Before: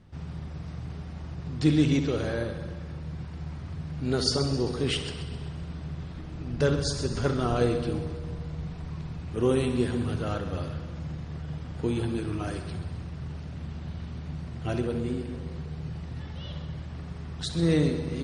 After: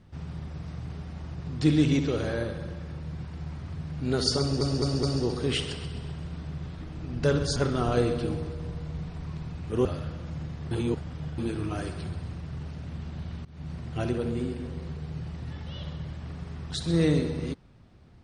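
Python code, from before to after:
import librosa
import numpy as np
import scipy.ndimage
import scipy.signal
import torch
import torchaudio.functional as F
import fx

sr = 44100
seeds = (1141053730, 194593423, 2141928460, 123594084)

y = fx.edit(x, sr, fx.stutter(start_s=4.4, slice_s=0.21, count=4),
    fx.cut(start_s=6.93, length_s=0.27),
    fx.cut(start_s=9.49, length_s=1.05),
    fx.reverse_span(start_s=11.4, length_s=0.67),
    fx.fade_in_from(start_s=14.14, length_s=0.27, floor_db=-20.5), tone=tone)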